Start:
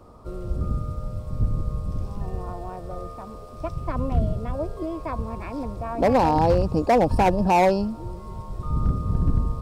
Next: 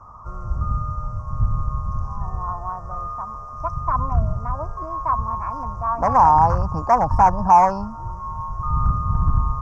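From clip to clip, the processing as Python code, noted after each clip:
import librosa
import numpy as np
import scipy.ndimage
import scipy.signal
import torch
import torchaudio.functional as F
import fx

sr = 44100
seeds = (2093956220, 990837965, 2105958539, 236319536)

y = fx.curve_eq(x, sr, hz=(120.0, 330.0, 480.0, 1100.0, 2100.0, 3800.0, 6100.0, 9300.0), db=(0, -15, -14, 13, -11, -28, 1, -22))
y = y * 10.0 ** (3.0 / 20.0)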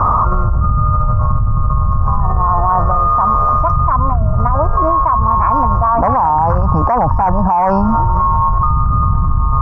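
y = scipy.signal.sosfilt(scipy.signal.butter(2, 2300.0, 'lowpass', fs=sr, output='sos'), x)
y = fx.env_flatten(y, sr, amount_pct=100)
y = y * 10.0 ** (-3.0 / 20.0)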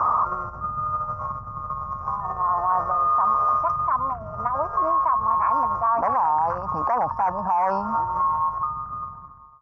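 y = fx.fade_out_tail(x, sr, length_s=1.34)
y = fx.highpass(y, sr, hz=1000.0, slope=6)
y = y * 10.0 ** (-4.5 / 20.0)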